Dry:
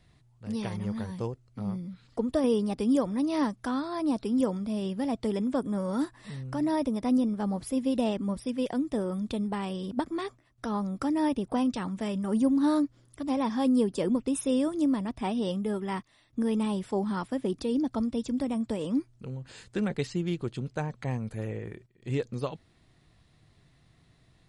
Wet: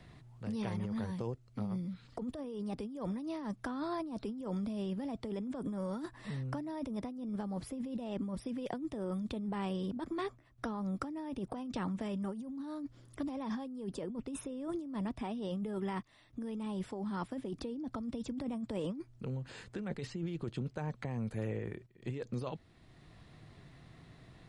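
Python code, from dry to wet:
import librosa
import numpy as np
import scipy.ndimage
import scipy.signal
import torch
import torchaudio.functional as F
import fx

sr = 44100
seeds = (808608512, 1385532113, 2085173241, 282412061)

y = fx.over_compress(x, sr, threshold_db=-33.0, ratio=-1.0)
y = fx.high_shelf(y, sr, hz=4500.0, db=-7.0)
y = fx.band_squash(y, sr, depth_pct=40)
y = y * 10.0 ** (-5.5 / 20.0)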